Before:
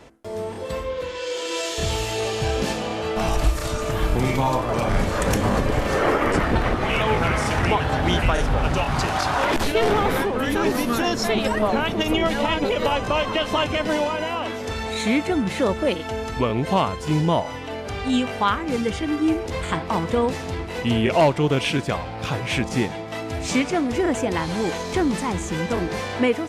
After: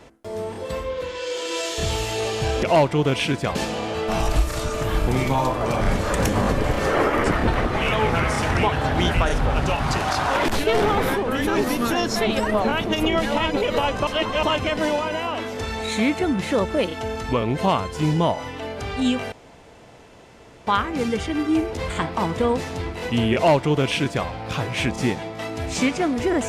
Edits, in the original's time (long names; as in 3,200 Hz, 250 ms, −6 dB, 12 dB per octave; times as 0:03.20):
0:13.15–0:13.51: reverse
0:18.40: splice in room tone 1.35 s
0:21.08–0:22.00: duplicate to 0:02.63